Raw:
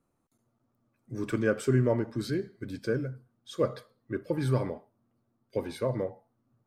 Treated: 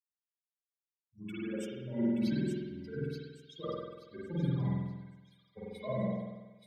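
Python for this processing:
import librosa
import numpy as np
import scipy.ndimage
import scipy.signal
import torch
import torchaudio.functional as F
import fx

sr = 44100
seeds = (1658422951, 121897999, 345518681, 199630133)

y = fx.bin_expand(x, sr, power=3.0)
y = scipy.signal.sosfilt(scipy.signal.butter(2, 85.0, 'highpass', fs=sr, output='sos'), y)
y = fx.bass_treble(y, sr, bass_db=12, treble_db=-12)
y = fx.hum_notches(y, sr, base_hz=60, count=9)
y = y + 0.74 * np.pad(y, (int(5.0 * sr / 1000.0), 0))[:len(y)]
y = fx.over_compress(y, sr, threshold_db=-35.0, ratio=-1.0)
y = fx.echo_wet_highpass(y, sr, ms=878, feedback_pct=45, hz=2600.0, wet_db=-3.0)
y = fx.rev_spring(y, sr, rt60_s=1.8, pass_ms=(47,), chirp_ms=60, drr_db=-7.0)
y = fx.band_widen(y, sr, depth_pct=70)
y = y * 10.0 ** (-7.5 / 20.0)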